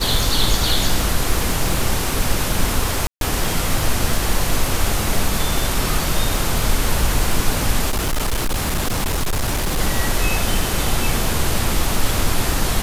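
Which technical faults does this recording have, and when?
surface crackle 170 per second −23 dBFS
0:03.07–0:03.21: drop-out 142 ms
0:07.89–0:09.79: clipping −16 dBFS

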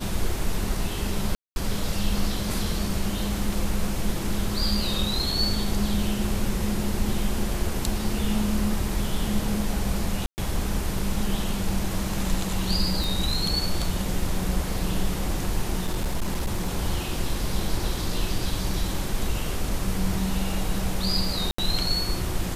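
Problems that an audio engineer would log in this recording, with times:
0:01.35–0:01.56: drop-out 211 ms
0:10.26–0:10.38: drop-out 119 ms
0:13.04: click
0:15.86–0:16.68: clipping −21 dBFS
0:21.51–0:21.58: drop-out 74 ms

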